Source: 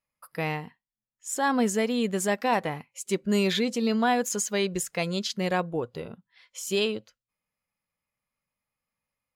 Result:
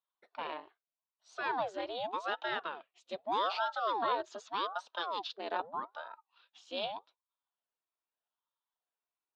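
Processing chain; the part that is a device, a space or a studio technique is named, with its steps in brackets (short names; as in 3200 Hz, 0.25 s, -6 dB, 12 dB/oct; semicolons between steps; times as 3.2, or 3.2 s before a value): voice changer toy (ring modulator with a swept carrier 630 Hz, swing 80%, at 0.82 Hz; speaker cabinet 430–4100 Hz, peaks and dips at 670 Hz +4 dB, 970 Hz +7 dB, 1400 Hz +3 dB, 2100 Hz -8 dB, 3700 Hz +8 dB); gain -8 dB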